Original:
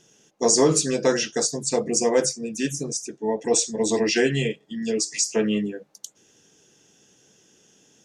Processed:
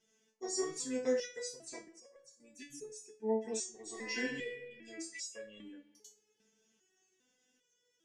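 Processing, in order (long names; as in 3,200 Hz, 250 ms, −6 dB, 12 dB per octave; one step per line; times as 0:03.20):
parametric band 2,000 Hz +7 dB 0.59 octaves
0:01.82–0:02.70: volume swells 514 ms
convolution reverb RT60 1.6 s, pre-delay 57 ms, DRR 17.5 dB
0:03.81–0:04.60: thrown reverb, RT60 1.3 s, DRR 4 dB
step-sequenced resonator 2.5 Hz 220–560 Hz
level −4 dB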